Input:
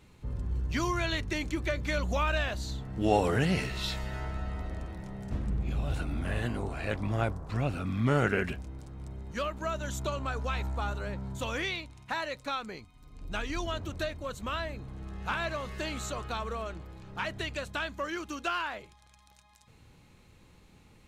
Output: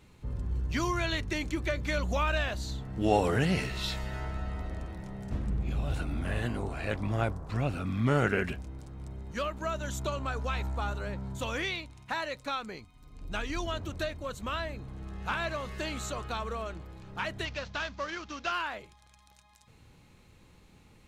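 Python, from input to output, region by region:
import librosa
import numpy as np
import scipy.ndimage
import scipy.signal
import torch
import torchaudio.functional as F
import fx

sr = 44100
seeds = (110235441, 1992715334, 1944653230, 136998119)

y = fx.chain(x, sr, fx.cvsd(bps=32000),
    fx.peak_eq(hz=340.0, db=-6.0, octaves=0.73), at=(17.45, 18.52))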